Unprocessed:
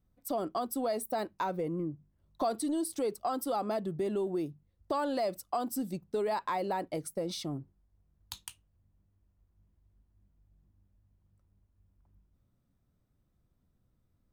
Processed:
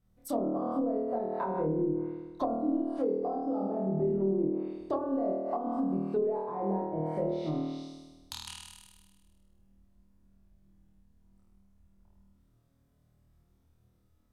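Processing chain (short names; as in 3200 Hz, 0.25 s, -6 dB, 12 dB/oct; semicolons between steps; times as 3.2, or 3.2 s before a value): 3.03–3.7 bell 5100 Hz +14 dB 0.34 oct; flutter echo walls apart 4.4 m, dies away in 1.3 s; treble ducked by the level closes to 450 Hz, closed at -24 dBFS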